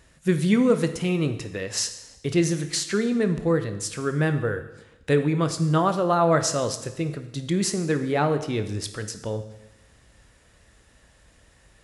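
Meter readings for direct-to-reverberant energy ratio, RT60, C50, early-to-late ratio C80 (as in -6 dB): 8.5 dB, 0.95 s, 10.5 dB, 13.0 dB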